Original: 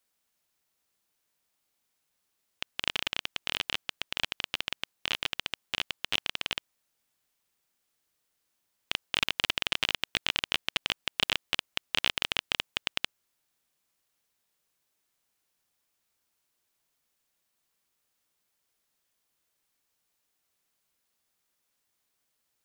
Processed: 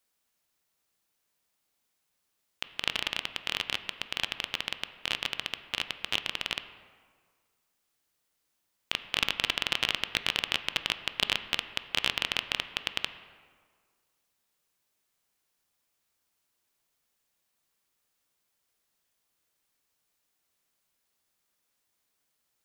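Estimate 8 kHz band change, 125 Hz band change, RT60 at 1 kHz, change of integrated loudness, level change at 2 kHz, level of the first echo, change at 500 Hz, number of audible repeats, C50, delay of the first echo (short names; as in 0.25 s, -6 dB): 0.0 dB, +0.5 dB, 1.8 s, 0.0 dB, +0.5 dB, none, +0.5 dB, none, 11.5 dB, none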